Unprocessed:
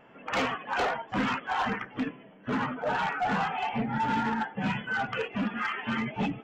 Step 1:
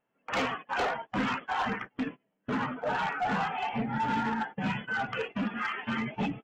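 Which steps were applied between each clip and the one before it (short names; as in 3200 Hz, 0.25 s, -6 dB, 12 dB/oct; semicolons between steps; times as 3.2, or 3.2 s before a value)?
gate -37 dBFS, range -24 dB; gain -1.5 dB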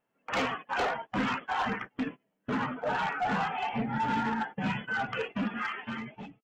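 ending faded out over 0.89 s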